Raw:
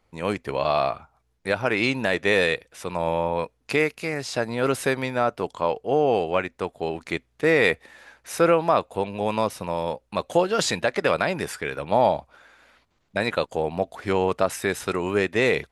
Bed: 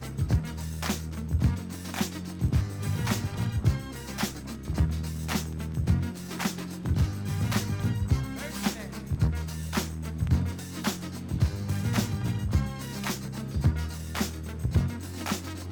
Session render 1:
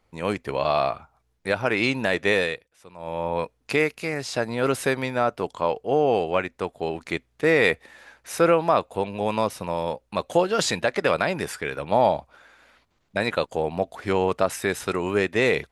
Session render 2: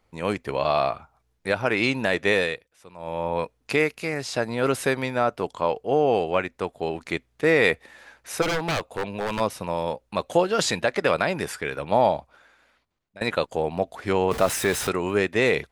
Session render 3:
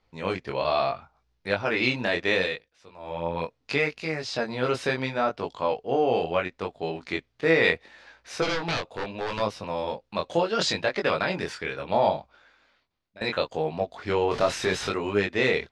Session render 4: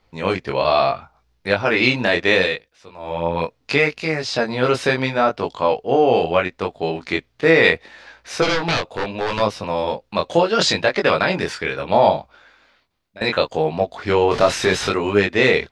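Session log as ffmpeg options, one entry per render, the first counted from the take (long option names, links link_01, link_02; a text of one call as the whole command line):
ffmpeg -i in.wav -filter_complex "[0:a]asplit=3[link_01][link_02][link_03];[link_01]atrim=end=2.69,asetpts=PTS-STARTPTS,afade=type=out:start_time=2.29:duration=0.4:silence=0.158489[link_04];[link_02]atrim=start=2.69:end=2.97,asetpts=PTS-STARTPTS,volume=-16dB[link_05];[link_03]atrim=start=2.97,asetpts=PTS-STARTPTS,afade=type=in:duration=0.4:silence=0.158489[link_06];[link_04][link_05][link_06]concat=n=3:v=0:a=1" out.wav
ffmpeg -i in.wav -filter_complex "[0:a]asplit=3[link_01][link_02][link_03];[link_01]afade=type=out:start_time=8.41:duration=0.02[link_04];[link_02]aeval=exprs='0.106*(abs(mod(val(0)/0.106+3,4)-2)-1)':channel_layout=same,afade=type=in:start_time=8.41:duration=0.02,afade=type=out:start_time=9.39:duration=0.02[link_05];[link_03]afade=type=in:start_time=9.39:duration=0.02[link_06];[link_04][link_05][link_06]amix=inputs=3:normalize=0,asettb=1/sr,asplit=3[link_07][link_08][link_09];[link_07]atrim=end=14.314[link_10];[link_08]atrim=start=14.31:end=14.89,asetpts=PTS-STARTPTS,afade=type=in:duration=0.004:curve=qsin,afade=type=out:start_time=0.576:duration=0.004:curve=qsin,aeval=exprs='val(0)+0.5*0.0447*sgn(val(0))':channel_layout=same[link_11];[link_09]atrim=start=14.886[link_12];[link_10][link_11]acrossfade=duration=0.004:curve1=hsin:curve2=qsin[link_13];[link_13][link_12]acrossfade=duration=0.004:curve1=qsin:curve2=hsin,asplit=2[link_14][link_15];[link_14]atrim=end=13.21,asetpts=PTS-STARTPTS,afade=type=out:start_time=11.99:duration=1.22:silence=0.0891251[link_16];[link_15]atrim=start=13.21,asetpts=PTS-STARTPTS,afade=type=in:duration=0.004:curve=hsin:silence=0.0891251[link_17];[link_16][link_17]concat=n=2:v=0:a=1" out.wav
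ffmpeg -i in.wav -af "lowpass=frequency=4800:width_type=q:width=1.5,flanger=delay=19:depth=5.4:speed=0.73" out.wav
ffmpeg -i in.wav -af "volume=8dB,alimiter=limit=-1dB:level=0:latency=1" out.wav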